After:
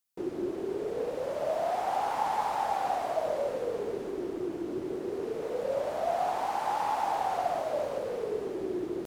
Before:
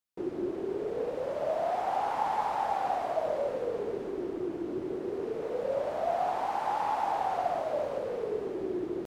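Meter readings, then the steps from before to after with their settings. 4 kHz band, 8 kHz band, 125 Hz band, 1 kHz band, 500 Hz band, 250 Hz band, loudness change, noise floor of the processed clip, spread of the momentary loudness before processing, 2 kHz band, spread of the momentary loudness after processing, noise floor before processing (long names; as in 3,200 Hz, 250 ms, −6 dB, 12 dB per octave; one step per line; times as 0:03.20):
+3.5 dB, can't be measured, 0.0 dB, +0.5 dB, 0.0 dB, 0.0 dB, 0.0 dB, −38 dBFS, 5 LU, +1.0 dB, 5 LU, −38 dBFS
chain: high-shelf EQ 4,900 Hz +9.5 dB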